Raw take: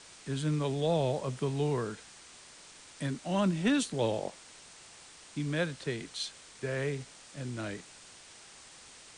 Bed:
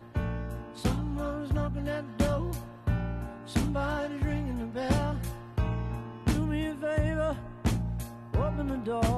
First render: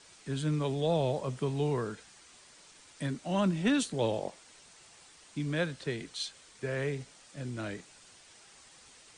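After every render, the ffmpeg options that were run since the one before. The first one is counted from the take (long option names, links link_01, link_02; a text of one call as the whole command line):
ffmpeg -i in.wav -af "afftdn=noise_reduction=6:noise_floor=-54" out.wav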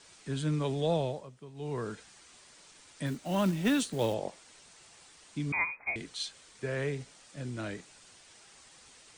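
ffmpeg -i in.wav -filter_complex "[0:a]asettb=1/sr,asplit=3[link_01][link_02][link_03];[link_01]atrim=end=3.064[link_04];[link_02]atrim=start=3.06:end=4.14,asetpts=PTS-STARTPTS,afade=type=in:duration=0.004:curve=qsin,afade=type=out:start_time=1.076:duration=0.004:curve=qsin,acrusher=bits=5:mode=log:mix=0:aa=0.000001[link_05];[link_03]atrim=start=4.136[link_06];[link_04][link_05]acrossfade=duration=0.004:curve1=hsin:curve2=qsin[link_07];[link_07][link_06]acrossfade=duration=0.004:curve1=qsin:curve2=hsin,asettb=1/sr,asplit=3[link_08][link_09][link_10];[link_08]atrim=end=5.524[link_11];[link_09]atrim=start=5.52:end=5.96,asetpts=PTS-STARTPTS,afade=type=in:duration=0.004:curve=qsin,afade=type=out:start_time=0.436:duration=0.004:curve=qsin,lowpass=frequency=2200:width_type=q:width=0.5098,lowpass=frequency=2200:width_type=q:width=0.6013,lowpass=frequency=2200:width_type=q:width=0.9,lowpass=frequency=2200:width_type=q:width=2.563,afreqshift=-2600[link_12];[link_10]atrim=start=5.956[link_13];[link_11][link_12]acrossfade=duration=0.004:curve1=hsin:curve2=qsin[link_14];[link_14][link_13]acrossfade=duration=0.004:curve1=qsin:curve2=hsin,asplit=3[link_15][link_16][link_17];[link_15]atrim=end=1.3,asetpts=PTS-STARTPTS,afade=type=out:start_time=0.93:duration=0.37:silence=0.149624[link_18];[link_16]atrim=start=1.3:end=1.54,asetpts=PTS-STARTPTS,volume=-16.5dB[link_19];[link_17]atrim=start=1.54,asetpts=PTS-STARTPTS,afade=type=in:duration=0.37:silence=0.149624[link_20];[link_18][link_19][link_20]concat=n=3:v=0:a=1" out.wav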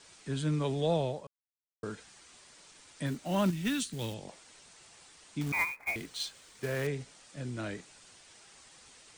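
ffmpeg -i in.wav -filter_complex "[0:a]asettb=1/sr,asplit=3[link_01][link_02][link_03];[link_01]atrim=end=3.504[link_04];[link_02]atrim=start=3.5:end=4.29,asetpts=PTS-STARTPTS,afade=type=in:duration=0.004:curve=qsin,afade=type=out:start_time=0.786:duration=0.004:curve=qsin,equalizer=frequency=620:width_type=o:width=1.7:gain=-14.5[link_05];[link_03]atrim=start=4.286[link_06];[link_04][link_05]acrossfade=duration=0.004:curve1=hsin:curve2=qsin[link_07];[link_07][link_06]acrossfade=duration=0.004:curve1=qsin:curve2=hsin,asettb=1/sr,asplit=3[link_08][link_09][link_10];[link_08]atrim=end=5.414[link_11];[link_09]atrim=start=5.41:end=6.87,asetpts=PTS-STARTPTS,afade=type=in:duration=0.004:curve=qsin,afade=type=out:start_time=1.456:duration=0.004:curve=qsin,acrusher=bits=3:mode=log:mix=0:aa=0.000001[link_12];[link_10]atrim=start=6.866[link_13];[link_11][link_12]acrossfade=duration=0.004:curve1=hsin:curve2=qsin[link_14];[link_14][link_13]acrossfade=duration=0.004:curve1=qsin:curve2=hsin,asplit=3[link_15][link_16][link_17];[link_15]atrim=end=1.27,asetpts=PTS-STARTPTS,afade=type=out:start_time=1.266:duration=0.004:curve=hsin[link_18];[link_16]atrim=start=1.27:end=1.83,asetpts=PTS-STARTPTS,volume=0[link_19];[link_17]atrim=start=1.83,asetpts=PTS-STARTPTS,afade=type=in:duration=0.004:curve=hsin[link_20];[link_18][link_19][link_20]concat=n=3:v=0:a=1" out.wav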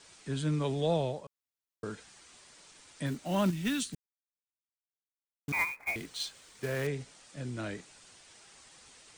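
ffmpeg -i in.wav -filter_complex "[0:a]asplit=3[link_01][link_02][link_03];[link_01]atrim=end=3.95,asetpts=PTS-STARTPTS,afade=type=out:start_time=3.946:duration=0.004:curve=hsin[link_04];[link_02]atrim=start=3.95:end=5.48,asetpts=PTS-STARTPTS,volume=0[link_05];[link_03]atrim=start=5.48,asetpts=PTS-STARTPTS,afade=type=in:duration=0.004:curve=hsin[link_06];[link_04][link_05][link_06]concat=n=3:v=0:a=1" out.wav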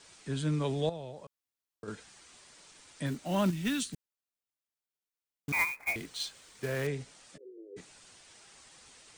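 ffmpeg -i in.wav -filter_complex "[0:a]asettb=1/sr,asplit=3[link_01][link_02][link_03];[link_01]atrim=end=0.894[link_04];[link_02]atrim=start=0.89:end=1.88,asetpts=PTS-STARTPTS,afade=type=in:duration=0.004:curve=qsin,afade=type=out:start_time=0.986:duration=0.004:curve=qsin,acompressor=threshold=-43dB:ratio=2.5:attack=3.2:release=140:knee=1:detection=peak[link_05];[link_03]atrim=start=1.876[link_06];[link_04][link_05]acrossfade=duration=0.004:curve1=hsin:curve2=qsin[link_07];[link_07][link_06]acrossfade=duration=0.004:curve1=qsin:curve2=hsin,asettb=1/sr,asplit=3[link_08][link_09][link_10];[link_08]atrim=end=5.524[link_11];[link_09]atrim=start=5.52:end=5.93,asetpts=PTS-STARTPTS,afade=type=in:duration=0.004:curve=qsin,afade=type=out:start_time=0.406:duration=0.004:curve=qsin,highshelf=frequency=3600:gain=5.5[link_12];[link_10]atrim=start=5.926[link_13];[link_11][link_12]acrossfade=duration=0.004:curve1=hsin:curve2=qsin[link_14];[link_14][link_13]acrossfade=duration=0.004:curve1=qsin:curve2=hsin,asplit=3[link_15][link_16][link_17];[link_15]afade=type=out:start_time=7.36:duration=0.02[link_18];[link_16]asuperpass=centerf=410:order=8:qfactor=2.9,afade=type=in:start_time=7.36:duration=0.02,afade=type=out:start_time=7.76:duration=0.02[link_19];[link_17]afade=type=in:start_time=7.76:duration=0.02[link_20];[link_18][link_19][link_20]amix=inputs=3:normalize=0" out.wav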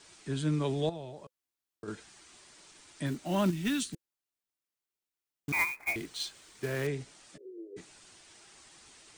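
ffmpeg -i in.wav -af "equalizer=frequency=340:width_type=o:width=0.29:gain=6,bandreject=frequency=510:width=12" out.wav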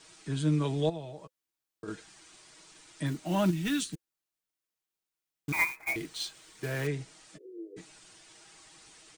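ffmpeg -i in.wav -af "aecho=1:1:6.3:0.46" out.wav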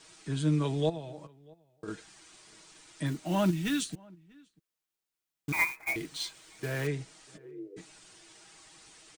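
ffmpeg -i in.wav -filter_complex "[0:a]asplit=2[link_01][link_02];[link_02]adelay=641.4,volume=-26dB,highshelf=frequency=4000:gain=-14.4[link_03];[link_01][link_03]amix=inputs=2:normalize=0" out.wav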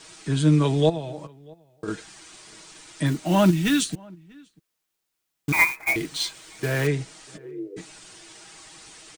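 ffmpeg -i in.wav -af "volume=9dB" out.wav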